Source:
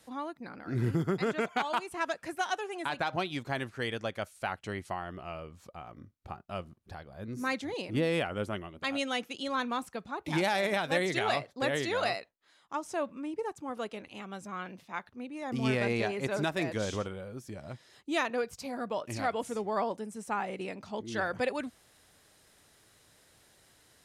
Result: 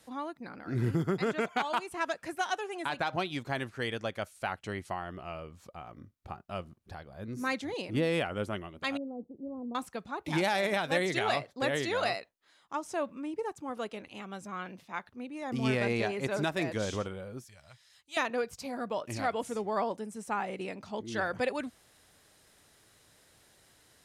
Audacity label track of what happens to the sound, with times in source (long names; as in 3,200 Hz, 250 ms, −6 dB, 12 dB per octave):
8.970000	9.750000	Gaussian smoothing sigma 16 samples
17.440000	18.170000	guitar amp tone stack bass-middle-treble 10-0-10